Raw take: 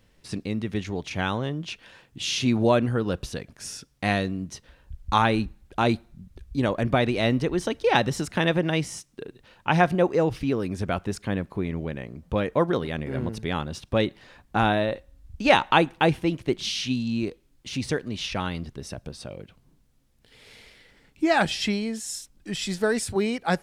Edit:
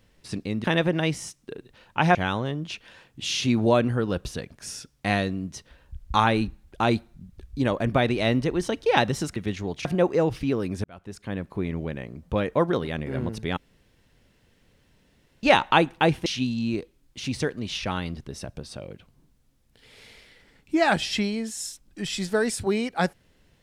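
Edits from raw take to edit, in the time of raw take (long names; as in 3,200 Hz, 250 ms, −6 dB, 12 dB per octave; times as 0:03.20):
0:00.64–0:01.13: swap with 0:08.34–0:09.85
0:10.84–0:11.63: fade in
0:13.57–0:15.43: fill with room tone
0:16.26–0:16.75: remove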